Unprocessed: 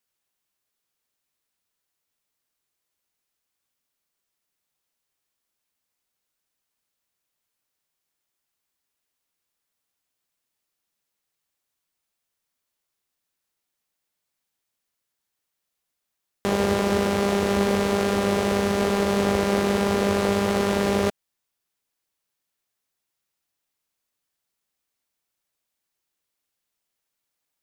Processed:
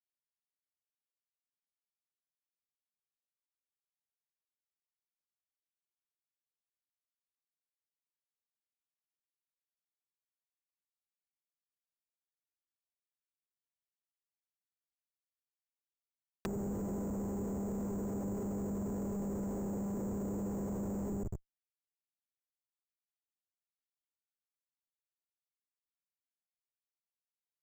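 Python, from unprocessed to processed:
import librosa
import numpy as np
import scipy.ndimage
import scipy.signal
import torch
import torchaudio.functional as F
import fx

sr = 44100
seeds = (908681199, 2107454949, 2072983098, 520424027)

y = fx.peak_eq(x, sr, hz=15000.0, db=10.0, octaves=1.8)
y = fx.echo_feedback(y, sr, ms=129, feedback_pct=37, wet_db=-5)
y = fx.schmitt(y, sr, flips_db=-27.5)
y = fx.env_lowpass_down(y, sr, base_hz=330.0, full_db=-32.0)
y = fx.low_shelf(y, sr, hz=450.0, db=-11.0)
y = np.repeat(y[::6], 6)[:len(y)]
y = y * librosa.db_to_amplitude(3.0)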